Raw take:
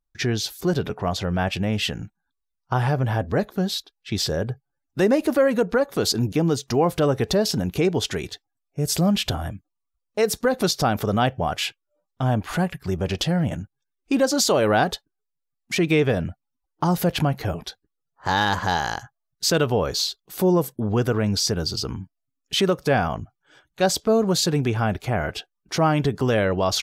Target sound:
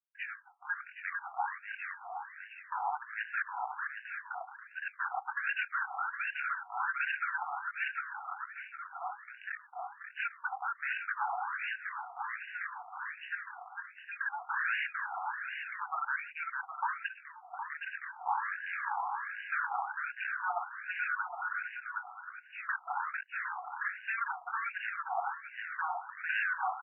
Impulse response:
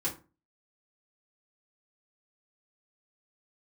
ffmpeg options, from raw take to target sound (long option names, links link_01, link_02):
-filter_complex "[0:a]asplit=2[link_01][link_02];[1:a]atrim=start_sample=2205,atrim=end_sample=3087[link_03];[link_02][link_03]afir=irnorm=-1:irlink=0,volume=-11.5dB[link_04];[link_01][link_04]amix=inputs=2:normalize=0,flanger=delay=17.5:depth=4:speed=1.6,highpass=frequency=510:width_type=q:width=4.9,aeval=exprs='0.15*(abs(mod(val(0)/0.15+3,4)-2)-1)':channel_layout=same,tiltshelf=frequency=1100:gain=4,aecho=1:1:450|765|985.5|1140|1248:0.631|0.398|0.251|0.158|0.1,asettb=1/sr,asplit=3[link_05][link_06][link_07];[link_05]atrim=end=17.064[link_08];[link_06]atrim=start=17.06:end=17.54,asetpts=PTS-STARTPTS,afade=type=in:duration=0.004:curve=qsin,afade=type=out:start_time=0.476:duration=0.004:curve=qsin,acompressor=threshold=-33dB:ratio=6[link_09];[link_07]atrim=start=17.536[link_10];[link_08][link_09]acrossfade=duration=0.004:curve1=hsin:curve2=qsin[link_11];[link_11][link_10]acrossfade=duration=0.004:curve1=qsin:curve2=hsin,afftfilt=real='re*between(b*sr/1024,970*pow(2100/970,0.5+0.5*sin(2*PI*1.3*pts/sr))/1.41,970*pow(2100/970,0.5+0.5*sin(2*PI*1.3*pts/sr))*1.41)':imag='im*between(b*sr/1024,970*pow(2100/970,0.5+0.5*sin(2*PI*1.3*pts/sr))/1.41,970*pow(2100/970,0.5+0.5*sin(2*PI*1.3*pts/sr))*1.41)':win_size=1024:overlap=0.75,volume=-5.5dB"